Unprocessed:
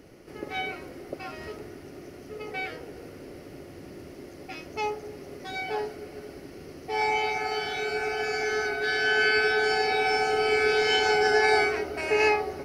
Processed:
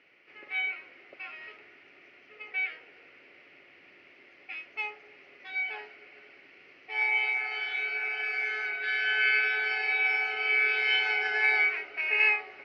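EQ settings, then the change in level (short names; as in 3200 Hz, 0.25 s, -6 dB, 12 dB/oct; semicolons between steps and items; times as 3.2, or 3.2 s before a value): band-pass 2400 Hz, Q 3.5; air absorption 200 m; +8.0 dB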